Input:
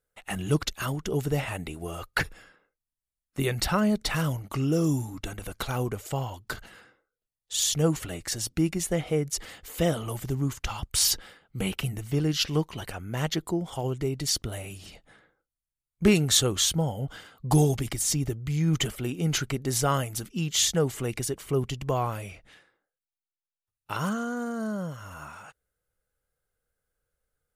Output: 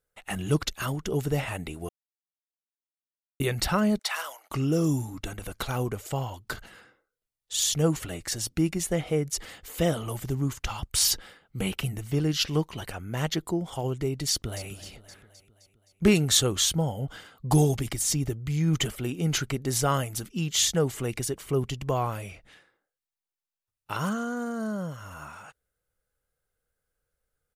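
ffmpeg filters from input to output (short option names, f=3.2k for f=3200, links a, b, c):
-filter_complex "[0:a]asettb=1/sr,asplit=3[a][b][c];[a]atrim=end=3.994[d];[b]atrim=start=3.99:end=4.51,asetpts=PTS-STARTPTS,afade=t=in:d=0.004:c=qsin,afade=t=out:st=0.516:d=0.004:c=qsin,highpass=f=680:w=0.5412,highpass=f=680:w=1.3066[e];[c]atrim=start=4.506[f];[d][e]acrossfade=d=0.004:c1=hsin:c2=qsin[g];[g][f]acrossfade=d=0.004:c1=qsin:c2=hsin,asplit=2[h][i];[i]afade=t=in:st=14.3:d=0.01,afade=t=out:st=14.7:d=0.01,aecho=0:1:260|520|780|1040|1300|1560:0.177828|0.106697|0.0640181|0.0384108|0.0230465|0.0138279[j];[h][j]amix=inputs=2:normalize=0,asplit=3[k][l][m];[k]atrim=end=1.89,asetpts=PTS-STARTPTS,afade=t=out:st=1.886:d=0.004:c=hsin[n];[l]atrim=start=1.89:end=3.4,asetpts=PTS-STARTPTS,volume=0[o];[m]atrim=start=3.4,asetpts=PTS-STARTPTS,afade=t=in:d=0.004:c=hsin[p];[n][o][p]concat=n=3:v=0:a=1"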